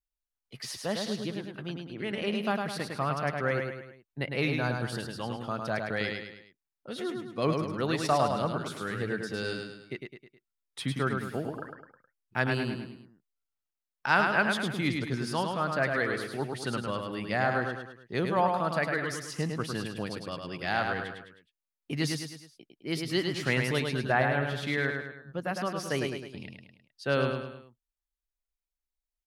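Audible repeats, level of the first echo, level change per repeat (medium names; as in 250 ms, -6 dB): 4, -4.5 dB, -6.5 dB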